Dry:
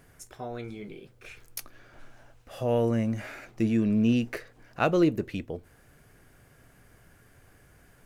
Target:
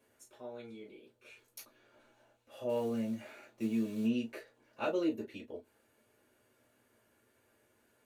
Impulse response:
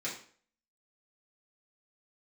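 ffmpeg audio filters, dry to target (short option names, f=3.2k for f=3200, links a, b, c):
-filter_complex "[0:a]asettb=1/sr,asplit=3[a][b][c];[a]atrim=end=2.694[d];[b]atrim=start=2.69:end=4.06,asetpts=PTS-STARTPTS,afade=t=in:d=0.004:c=qsin,afade=t=out:st=1.366:d=0.004:c=qsin,acrusher=bits=6:mode=log:mix=0:aa=0.000001[e];[c]atrim=start=4.056[f];[d][e]acrossfade=d=0.004:c1=hsin:c2=qsin[g];[g][f]acrossfade=d=0.004:c1=qsin:c2=hsin[h];[1:a]atrim=start_sample=2205,atrim=end_sample=4410,asetrate=79380,aresample=44100[i];[h][i]afir=irnorm=-1:irlink=0,volume=-8dB"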